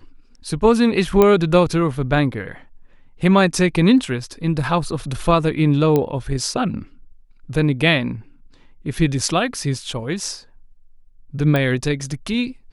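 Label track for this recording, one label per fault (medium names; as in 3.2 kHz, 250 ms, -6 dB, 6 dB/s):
1.220000	1.220000	pop -3 dBFS
5.960000	5.960000	pop -7 dBFS
11.560000	11.560000	pop -8 dBFS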